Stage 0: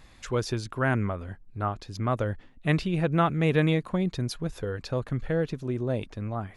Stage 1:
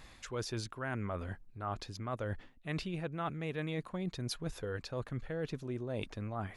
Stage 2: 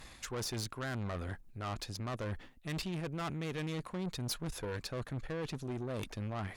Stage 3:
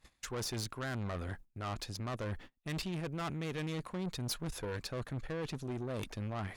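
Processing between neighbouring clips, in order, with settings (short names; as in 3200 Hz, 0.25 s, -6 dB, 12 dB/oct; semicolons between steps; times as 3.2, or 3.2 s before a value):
low shelf 410 Hz -4 dB; reverse; compressor 6:1, threshold -36 dBFS, peak gain reduction 16 dB; reverse; gain +1 dB
tube stage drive 39 dB, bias 0.55; high shelf 6800 Hz +7 dB; gain +5 dB
gate -49 dBFS, range -22 dB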